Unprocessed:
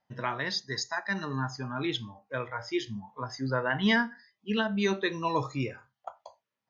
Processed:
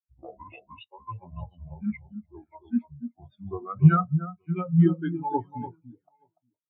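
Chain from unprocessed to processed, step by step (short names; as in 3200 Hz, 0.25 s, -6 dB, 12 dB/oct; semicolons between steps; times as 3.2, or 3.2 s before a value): gliding pitch shift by -11.5 st ending unshifted; echo with dull and thin repeats by turns 0.291 s, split 1400 Hz, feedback 53%, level -4 dB; spectral expander 2.5:1; gain +8 dB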